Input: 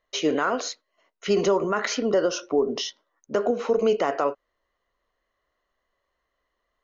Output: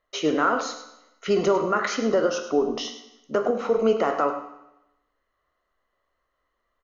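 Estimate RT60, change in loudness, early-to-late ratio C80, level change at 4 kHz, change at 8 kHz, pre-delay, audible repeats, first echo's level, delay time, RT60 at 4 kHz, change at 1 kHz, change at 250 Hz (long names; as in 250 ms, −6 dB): 0.95 s, +0.5 dB, 9.0 dB, −2.0 dB, can't be measured, 14 ms, 1, −11.5 dB, 103 ms, 0.90 s, +2.5 dB, +1.0 dB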